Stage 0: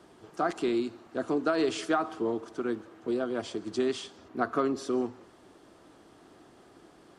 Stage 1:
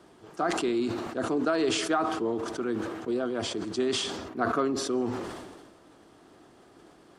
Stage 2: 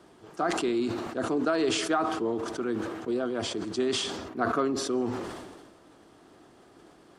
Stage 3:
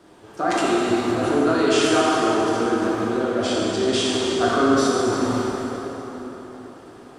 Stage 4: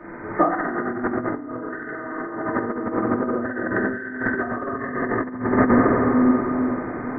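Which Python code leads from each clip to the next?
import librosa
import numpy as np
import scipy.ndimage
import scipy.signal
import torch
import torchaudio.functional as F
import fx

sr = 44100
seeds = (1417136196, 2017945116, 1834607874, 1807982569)

y1 = fx.sustainer(x, sr, db_per_s=38.0)
y2 = y1
y3 = fx.rev_plate(y2, sr, seeds[0], rt60_s=4.3, hf_ratio=0.65, predelay_ms=0, drr_db=-6.5)
y3 = F.gain(torch.from_numpy(y3), 2.0).numpy()
y4 = fx.freq_compress(y3, sr, knee_hz=1200.0, ratio=4.0)
y4 = fx.room_shoebox(y4, sr, seeds[1], volume_m3=280.0, walls='furnished', distance_m=2.6)
y4 = fx.over_compress(y4, sr, threshold_db=-21.0, ratio=-0.5)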